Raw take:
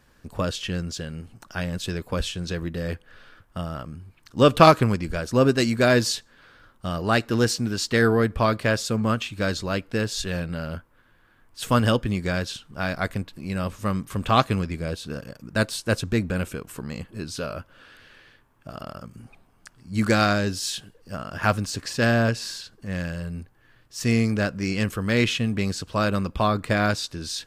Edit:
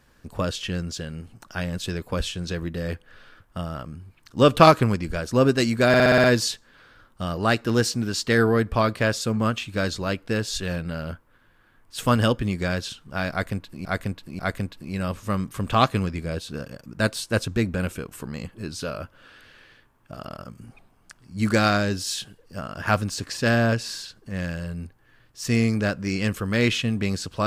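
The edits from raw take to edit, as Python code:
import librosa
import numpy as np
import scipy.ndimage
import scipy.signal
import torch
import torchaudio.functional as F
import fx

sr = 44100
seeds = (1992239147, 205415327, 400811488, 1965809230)

y = fx.edit(x, sr, fx.stutter(start_s=5.88, slice_s=0.06, count=7),
    fx.repeat(start_s=12.95, length_s=0.54, count=3), tone=tone)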